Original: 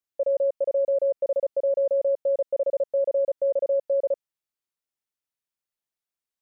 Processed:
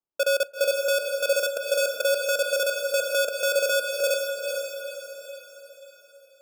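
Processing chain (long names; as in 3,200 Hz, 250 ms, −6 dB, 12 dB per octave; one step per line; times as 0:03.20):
high-pass filter 280 Hz 24 dB per octave
spectral tilt −3.5 dB per octave
decimation without filtering 22×
gate pattern "xxx.x.x." 105 BPM −60 dB
feedback delay with all-pass diffusion 459 ms, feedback 46%, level −3.5 dB
on a send at −16.5 dB: convolution reverb RT60 0.30 s, pre-delay 3 ms
on the sum: level −1.5 dB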